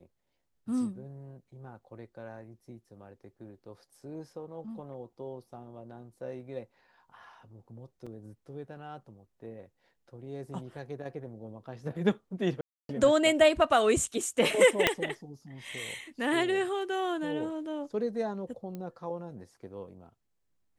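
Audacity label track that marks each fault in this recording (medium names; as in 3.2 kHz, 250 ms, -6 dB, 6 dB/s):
8.060000	8.070000	dropout 5.6 ms
12.610000	12.890000	dropout 282 ms
14.870000	14.870000	pop -7 dBFS
18.750000	18.750000	pop -27 dBFS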